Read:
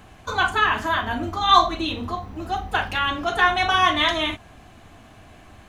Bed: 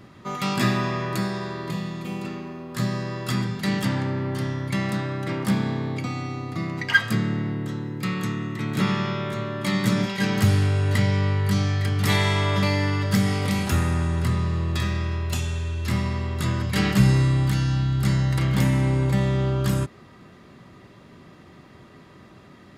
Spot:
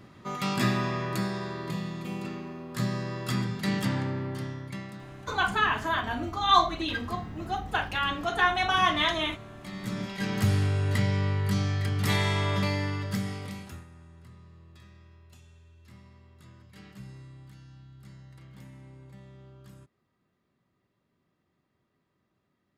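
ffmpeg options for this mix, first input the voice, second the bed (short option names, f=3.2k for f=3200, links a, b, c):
-filter_complex "[0:a]adelay=5000,volume=-5.5dB[a];[1:a]volume=8dB,afade=t=out:st=3.97:d=0.97:silence=0.223872,afade=t=in:st=9.71:d=0.83:silence=0.251189,afade=t=out:st=12.53:d=1.33:silence=0.0707946[b];[a][b]amix=inputs=2:normalize=0"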